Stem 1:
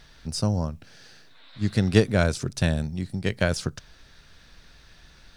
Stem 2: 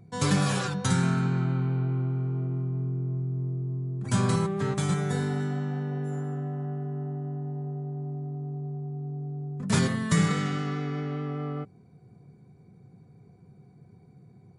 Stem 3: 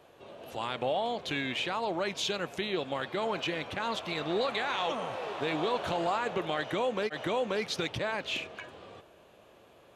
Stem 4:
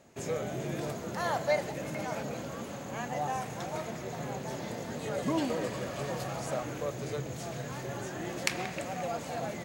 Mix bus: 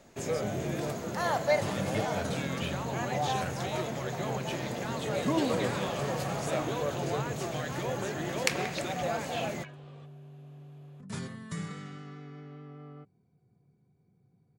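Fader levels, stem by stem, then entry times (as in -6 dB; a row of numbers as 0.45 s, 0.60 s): -17.0 dB, -14.5 dB, -7.0 dB, +2.0 dB; 0.00 s, 1.40 s, 1.05 s, 0.00 s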